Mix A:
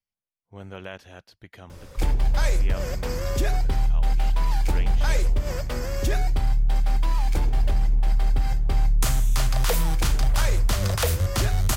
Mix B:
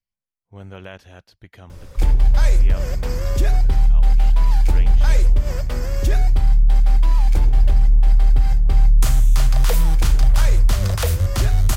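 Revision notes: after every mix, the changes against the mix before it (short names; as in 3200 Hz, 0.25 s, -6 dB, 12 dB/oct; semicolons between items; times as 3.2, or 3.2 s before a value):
master: add low shelf 100 Hz +8.5 dB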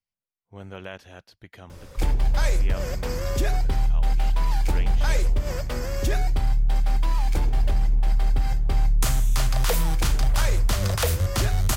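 master: add low shelf 100 Hz -8.5 dB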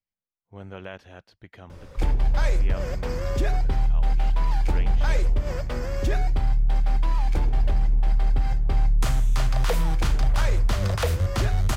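master: add LPF 3000 Hz 6 dB/oct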